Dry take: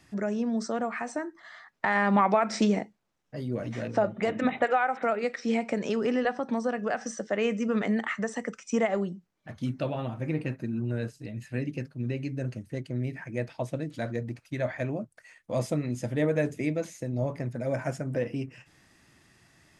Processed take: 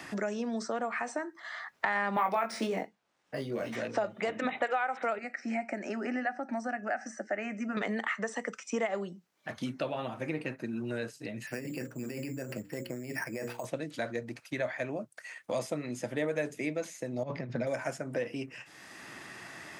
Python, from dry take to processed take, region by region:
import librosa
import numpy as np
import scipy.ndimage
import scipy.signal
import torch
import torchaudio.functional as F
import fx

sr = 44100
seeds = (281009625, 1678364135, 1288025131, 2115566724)

y = fx.chain(x, sr, fx.doubler(ms=22.0, db=-4),
    fx.resample_linear(factor=3), at=(2.14, 3.76))
y = fx.chain(y, sr, fx.high_shelf(hz=5000.0, db=-11.0),
    fx.fixed_phaser(hz=700.0, stages=8), at=(5.18, 7.77))
y = fx.chain(y, sr, fx.hum_notches(base_hz=60, count=9),
    fx.over_compress(threshold_db=-36.0, ratio=-1.0),
    fx.resample_bad(factor=6, down='filtered', up='hold'), at=(11.47, 13.65))
y = fx.chain(y, sr, fx.lowpass(hz=4900.0, slope=24),
    fx.peak_eq(hz=150.0, db=9.5, octaves=1.4),
    fx.over_compress(threshold_db=-27.0, ratio=-0.5), at=(17.23, 17.67))
y = fx.highpass(y, sr, hz=540.0, slope=6)
y = fx.band_squash(y, sr, depth_pct=70)